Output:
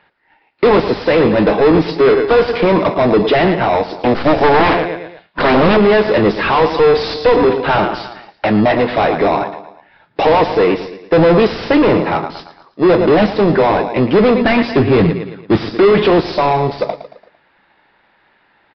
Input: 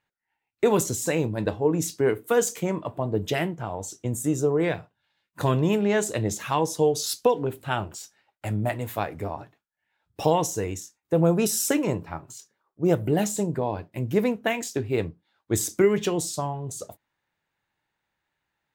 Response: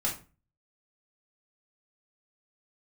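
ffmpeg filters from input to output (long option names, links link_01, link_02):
-filter_complex "[0:a]highpass=frequency=150:width=0.5412,highpass=frequency=150:width=1.3066,asplit=2[link_01][link_02];[link_02]aecho=0:1:113|226|339|452:0.158|0.0682|0.0293|0.0126[link_03];[link_01][link_03]amix=inputs=2:normalize=0,asettb=1/sr,asplit=3[link_04][link_05][link_06];[link_04]atrim=end=3.974[link_07];[link_05]atrim=start=3.97:end=5.77,asetpts=PTS-STARTPTS,afade=type=in:duration=0.004:curve=qsin,afade=type=out:start_time=1.796:duration=0.004:curve=qsin,aeval=exprs='0.266*(cos(1*acos(clip(val(0)/0.266,-1,1)))-cos(1*PI/2))+0.119*(cos(6*acos(clip(val(0)/0.266,-1,1)))-cos(6*PI/2))':channel_layout=same[link_08];[link_06]atrim=start=5.766[link_09];[link_07][link_08]acrossfade=duration=0.004:curve1=hsin:curve2=qsin[link_10];[link_10][link_09]acrossfade=duration=0.004:curve1=qsin:curve2=hsin,asplit=3[link_11][link_12][link_13];[link_11]afade=type=out:start_time=14.4:duration=0.02[link_14];[link_12]asubboost=boost=5.5:cutoff=190,afade=type=in:start_time=14.4:duration=0.02,afade=type=out:start_time=15.74:duration=0.02[link_15];[link_13]afade=type=in:start_time=15.74:duration=0.02[link_16];[link_14][link_15][link_16]amix=inputs=3:normalize=0,asplit=2[link_17][link_18];[link_18]highpass=frequency=720:poles=1,volume=33dB,asoftclip=type=tanh:threshold=-6.5dB[link_19];[link_17][link_19]amix=inputs=2:normalize=0,lowpass=frequency=1300:poles=1,volume=-6dB,asplit=2[link_20][link_21];[link_21]acrusher=samples=29:mix=1:aa=0.000001,volume=-11.5dB[link_22];[link_20][link_22]amix=inputs=2:normalize=0,aresample=11025,aresample=44100,volume=3.5dB"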